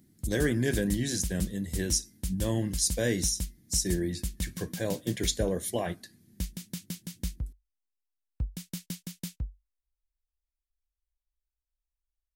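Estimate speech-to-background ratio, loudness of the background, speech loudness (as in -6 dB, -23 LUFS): 8.0 dB, -38.5 LUFS, -30.5 LUFS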